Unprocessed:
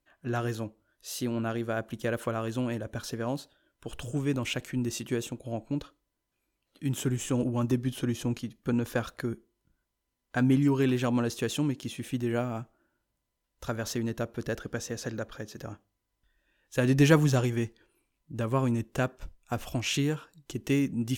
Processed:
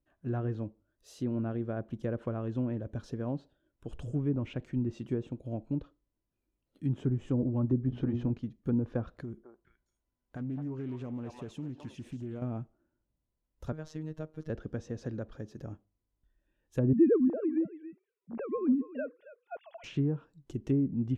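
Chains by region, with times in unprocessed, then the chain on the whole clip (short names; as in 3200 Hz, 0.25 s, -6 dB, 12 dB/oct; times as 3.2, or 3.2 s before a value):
7.88–8.3 LPF 6200 Hz + notches 60/120/180/240/300/360/420/480/540 Hz + sample leveller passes 1
9.22–12.42 delay with a stepping band-pass 0.213 s, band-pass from 860 Hz, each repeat 1.4 oct, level 0 dB + compressor 2.5:1, threshold -38 dBFS + Doppler distortion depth 0.19 ms
13.72–14.5 bell 210 Hz -5 dB 1.5 oct + robotiser 156 Hz
16.93–19.84 sine-wave speech + echo 0.275 s -16 dB
whole clip: treble ducked by the level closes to 710 Hz, closed at -22 dBFS; tilt shelf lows +8 dB, about 740 Hz; gain -7.5 dB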